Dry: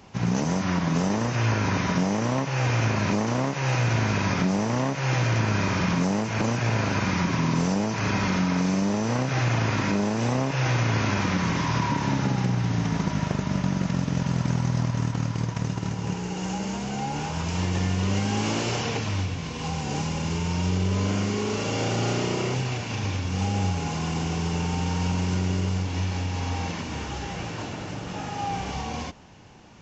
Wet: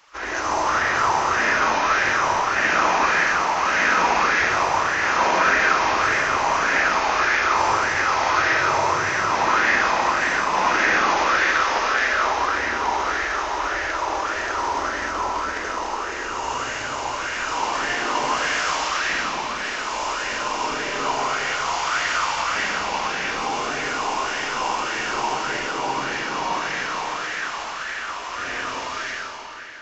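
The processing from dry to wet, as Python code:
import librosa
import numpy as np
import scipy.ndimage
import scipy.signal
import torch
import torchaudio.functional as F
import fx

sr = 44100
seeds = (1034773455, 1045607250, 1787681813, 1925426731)

y = fx.spec_gate(x, sr, threshold_db=-15, keep='weak')
y = fx.rev_freeverb(y, sr, rt60_s=3.5, hf_ratio=0.85, predelay_ms=35, drr_db=-4.5)
y = fx.bell_lfo(y, sr, hz=1.7, low_hz=900.0, high_hz=1800.0, db=14)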